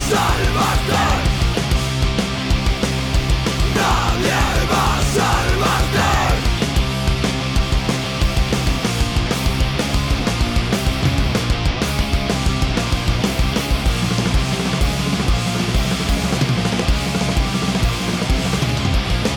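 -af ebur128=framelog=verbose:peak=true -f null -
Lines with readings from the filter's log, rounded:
Integrated loudness:
  I:         -18.3 LUFS
  Threshold: -28.3 LUFS
Loudness range:
  LRA:         2.1 LU
  Threshold: -38.4 LUFS
  LRA low:   -19.0 LUFS
  LRA high:  -16.9 LUFS
True peak:
  Peak:       -6.0 dBFS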